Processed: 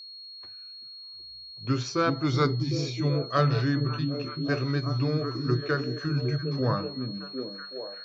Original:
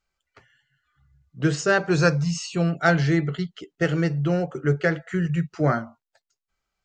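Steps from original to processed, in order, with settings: varispeed -15%; whine 4300 Hz -36 dBFS; delay with a stepping band-pass 0.378 s, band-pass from 200 Hz, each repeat 0.7 oct, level -1 dB; gain -5.5 dB

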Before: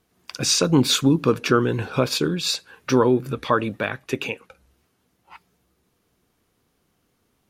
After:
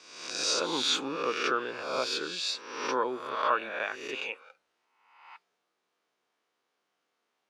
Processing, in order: spectral swells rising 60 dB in 0.93 s; HPF 610 Hz 12 dB/oct; air absorption 89 m; gain -7.5 dB

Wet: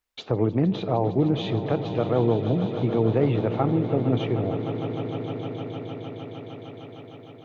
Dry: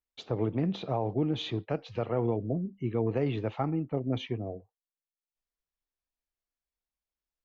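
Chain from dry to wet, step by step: high shelf 2800 Hz -9.5 dB; on a send: swelling echo 0.153 s, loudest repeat 5, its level -14 dB; on the sum: mismatched tape noise reduction encoder only; gain +7 dB

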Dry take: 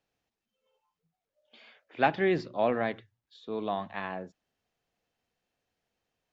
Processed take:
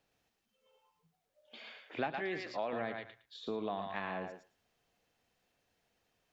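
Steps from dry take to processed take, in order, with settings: 2.19–2.73 low shelf 350 Hz -11.5 dB; on a send: thinning echo 0.112 s, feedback 15%, high-pass 820 Hz, level -4.5 dB; on the sum: compressor 4:1, threshold -40 dBFS, peak gain reduction 18 dB; gain +4 dB

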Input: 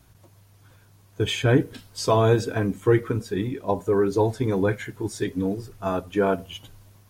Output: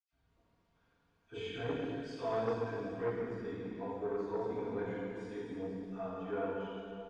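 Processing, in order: comb 4.3 ms, depth 49%; de-hum 51.14 Hz, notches 5; dispersion lows, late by 72 ms, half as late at 1800 Hz; reverb RT60 2.6 s, pre-delay 46 ms; core saturation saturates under 640 Hz; gain +2.5 dB

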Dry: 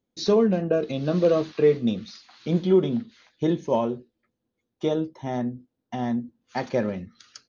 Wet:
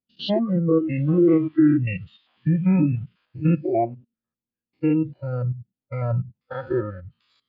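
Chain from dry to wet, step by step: stepped spectrum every 0.1 s; formant shift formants -5 st; spectral noise reduction 19 dB; treble ducked by the level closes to 2800 Hz, closed at -23.5 dBFS; gain +6.5 dB

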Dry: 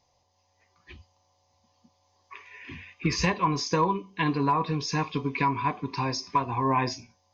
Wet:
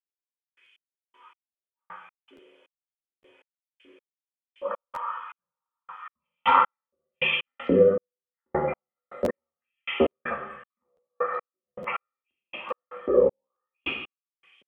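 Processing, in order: bell 340 Hz +6 dB 0.3 oct; in parallel at 0 dB: compressor, threshold -37 dBFS, peak gain reduction 17.5 dB; on the sum: speed mistake 15 ips tape played at 7.5 ips; LFO high-pass saw up 1.3 Hz 300–3100 Hz; on a send at -1 dB: reverb RT60 0.80 s, pre-delay 3 ms; on the sum: step gate "...x..x...x.xx" 79 bpm -60 dB; crackling interface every 0.86 s, samples 512, repeat, from 0.64; gain +2.5 dB

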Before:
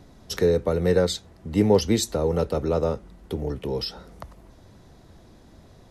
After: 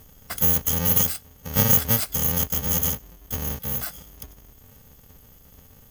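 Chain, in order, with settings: FFT order left unsorted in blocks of 128 samples; formant shift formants +3 st

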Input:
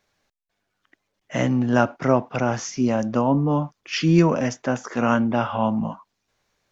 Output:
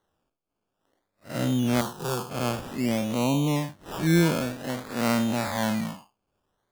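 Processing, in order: time blur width 0.13 s; decimation with a swept rate 18×, swing 60% 0.53 Hz; 1.81–2.3 fixed phaser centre 410 Hz, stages 8; gain -3 dB

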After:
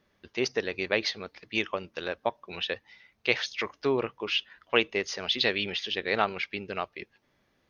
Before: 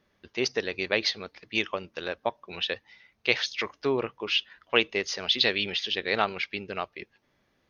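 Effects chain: dynamic EQ 4300 Hz, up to -4 dB, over -39 dBFS, Q 1

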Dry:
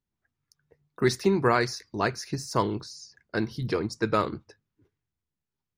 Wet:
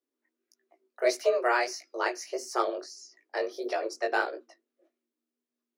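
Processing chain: frequency shift +240 Hz; chorus 1.6 Hz, delay 16 ms, depth 5.9 ms

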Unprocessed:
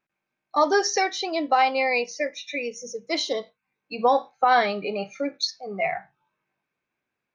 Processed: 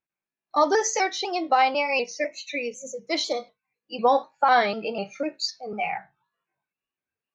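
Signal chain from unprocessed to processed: trilling pitch shifter +1.5 st, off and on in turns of 0.249 s; spectral noise reduction 11 dB

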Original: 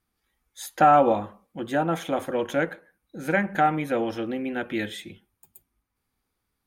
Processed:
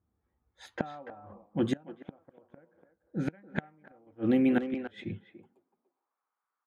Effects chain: high-pass sweep 77 Hz -> 1200 Hz, 5.01–6.16; flipped gate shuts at -19 dBFS, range -29 dB; speakerphone echo 0.29 s, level -7 dB; low-pass opened by the level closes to 820 Hz, open at -26.5 dBFS; dynamic EQ 190 Hz, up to +7 dB, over -44 dBFS, Q 0.71; 1.77–4.07 upward expander 1.5:1, over -42 dBFS

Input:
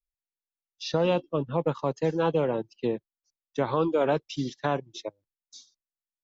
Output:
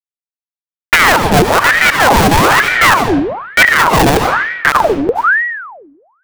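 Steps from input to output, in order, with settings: Doppler pass-by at 2.19, 5 m/s, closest 2.4 m; bell 6200 Hz -13 dB 1.2 oct; in parallel at -7 dB: sine folder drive 4 dB, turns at -14.5 dBFS; on the sum: rotary speaker horn 7 Hz; small resonant body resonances 420/3800 Hz, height 12 dB, ringing for 80 ms; Schmitt trigger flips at -29 dBFS; reverb RT60 1.0 s, pre-delay 55 ms, DRR 8.5 dB; maximiser +28.5 dB; ring modulator with a swept carrier 1100 Hz, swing 75%, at 1.1 Hz

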